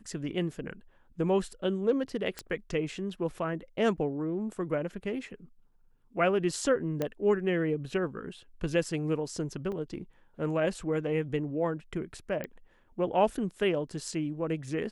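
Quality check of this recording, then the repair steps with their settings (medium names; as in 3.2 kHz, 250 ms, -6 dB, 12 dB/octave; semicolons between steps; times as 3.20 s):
2.39 s: pop -19 dBFS
7.02 s: pop -17 dBFS
9.72 s: dropout 3.8 ms
12.44 s: pop -22 dBFS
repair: de-click; interpolate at 9.72 s, 3.8 ms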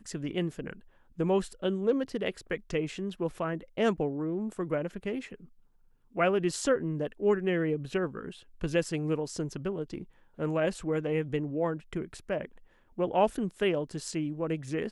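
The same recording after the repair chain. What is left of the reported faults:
2.39 s: pop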